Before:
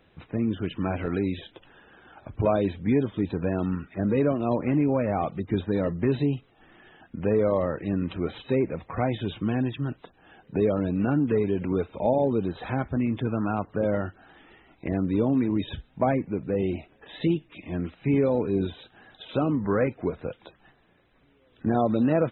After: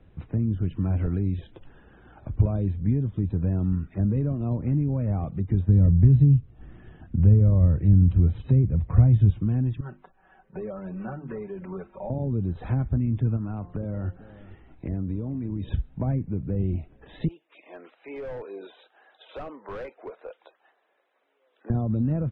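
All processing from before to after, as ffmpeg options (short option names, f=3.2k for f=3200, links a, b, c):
-filter_complex "[0:a]asettb=1/sr,asplit=3[a][b][c];[a]atrim=end=5.684[d];[b]atrim=start=5.68:end=9.3,asetpts=PTS-STARTPTS,afade=t=in:d=0.004:c=qsin,afade=t=out:st=3.616:d=0.004:c=qsin,equalizer=f=75:w=0.47:g=10.5,bandreject=f=820:w=16[e];[c]atrim=start=9.296[f];[d][e]acrossfade=d=0.004:c1=hsin:c2=qsin[g];[g][f]acrossfade=d=0.004:c1=qsin:c2=hsin,asettb=1/sr,asplit=3[h][i][j];[h]atrim=end=9.804[k];[i]atrim=start=9.8:end=12.1,asetpts=PTS-STARTPTS,afade=t=in:d=0.004:c=qsin,afade=t=out:st=2.296:d=0.004:c=qsin,acrossover=split=590 2300:gain=0.158 1 0.112[l][m][n];[l][m][n]amix=inputs=3:normalize=0,bandreject=f=50:t=h:w=6,bandreject=f=100:t=h:w=6,bandreject=f=150:t=h:w=6,bandreject=f=200:t=h:w=6,bandreject=f=250:t=h:w=6,bandreject=f=300:t=h:w=6,bandreject=f=350:t=h:w=6,aecho=1:1:5.3:0.81,atrim=end_sample=101430[o];[j]atrim=start=12.096[p];[k][o]acrossfade=d=0.004:c1=hsin:c2=qsin[q];[q][p]acrossfade=d=0.004:c1=qsin:c2=hsin,asettb=1/sr,asplit=3[r][s][t];[r]atrim=end=13.364[u];[s]atrim=start=13.36:end=15.71,asetpts=PTS-STARTPTS,afade=t=in:d=0.004:c=qsin,afade=t=out:st=2.346:d=0.004:c=qsin,bandreject=f=176.1:t=h:w=4,bandreject=f=352.2:t=h:w=4,bandreject=f=528.3:t=h:w=4,bandreject=f=704.4:t=h:w=4,bandreject=f=880.5:t=h:w=4,bandreject=f=1.0566k:t=h:w=4,acompressor=threshold=-29dB:ratio=4:attack=3.2:release=140:knee=1:detection=peak,aecho=1:1:442:0.112,atrim=end_sample=103635[v];[t]atrim=start=15.706[w];[u][v]acrossfade=d=0.004:c1=hsin:c2=qsin[x];[x][w]acrossfade=d=0.004:c1=qsin:c2=hsin,asettb=1/sr,asplit=3[y][z][aa];[y]atrim=end=17.284[ab];[z]atrim=start=17.28:end=21.7,asetpts=PTS-STARTPTS,afade=t=in:d=0.004:c=qsin,afade=t=out:st=4.416:d=0.004:c=qsin,highpass=f=520:w=0.5412,highpass=f=520:w=1.3066,asoftclip=type=hard:threshold=-29.5dB[ac];[aa]atrim=start=21.696[ad];[ab][ac]acrossfade=d=0.004:c1=hsin:c2=qsin[ae];[ae][ad]acrossfade=d=0.004:c1=qsin:c2=hsin,aemphasis=mode=reproduction:type=riaa,acrossover=split=180[af][ag];[ag]acompressor=threshold=-30dB:ratio=4[ah];[af][ah]amix=inputs=2:normalize=0,volume=-3.5dB"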